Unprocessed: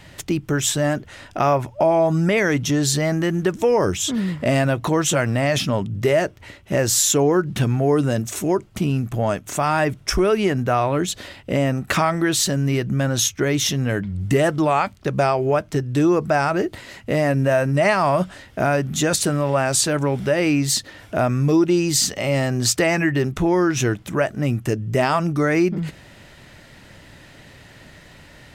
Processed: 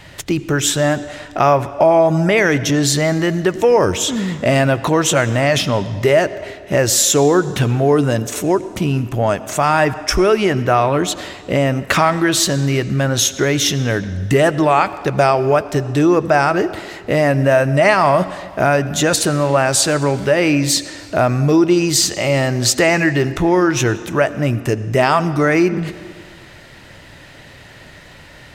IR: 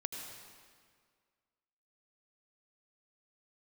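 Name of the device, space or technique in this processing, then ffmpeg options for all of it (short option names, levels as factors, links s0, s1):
filtered reverb send: -filter_complex "[0:a]asplit=2[s0][s1];[s1]highpass=f=200:w=0.5412,highpass=f=200:w=1.3066,lowpass=6700[s2];[1:a]atrim=start_sample=2205[s3];[s2][s3]afir=irnorm=-1:irlink=0,volume=0.355[s4];[s0][s4]amix=inputs=2:normalize=0,asettb=1/sr,asplit=3[s5][s6][s7];[s5]atrim=end=14.814[s8];[s6]atrim=start=14.81:end=15.93,asetpts=PTS-STARTPTS,afade=t=in:d=0.004:c=qsin,afade=t=out:st=1.116:d=0.004:c=qsin,highshelf=f=7600:g=4.5[s9];[s7]atrim=start=15.926[s10];[s8][s9]acrossfade=d=0.004:c1=hsin:c2=qsin[s11];[s11][s10]acrossfade=d=0.004:c1=qsin:c2=hsin,volume=1.5"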